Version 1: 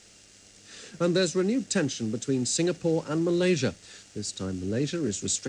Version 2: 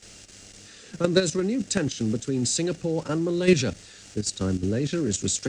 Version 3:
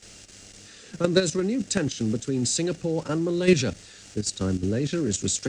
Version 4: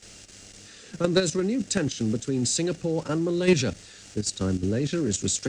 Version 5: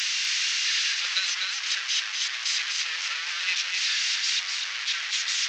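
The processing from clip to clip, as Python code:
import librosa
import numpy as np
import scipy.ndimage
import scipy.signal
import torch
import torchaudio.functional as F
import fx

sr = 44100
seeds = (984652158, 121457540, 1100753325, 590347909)

y1 = fx.level_steps(x, sr, step_db=11)
y1 = fx.low_shelf(y1, sr, hz=97.0, db=6.0)
y1 = y1 * librosa.db_to_amplitude(7.5)
y2 = y1
y3 = 10.0 ** (-8.5 / 20.0) * np.tanh(y2 / 10.0 ** (-8.5 / 20.0))
y4 = fx.delta_mod(y3, sr, bps=32000, step_db=-20.0)
y4 = fx.ladder_highpass(y4, sr, hz=1600.0, resonance_pct=25)
y4 = y4 + 10.0 ** (-4.5 / 20.0) * np.pad(y4, (int(248 * sr / 1000.0), 0))[:len(y4)]
y4 = y4 * librosa.db_to_amplitude(7.0)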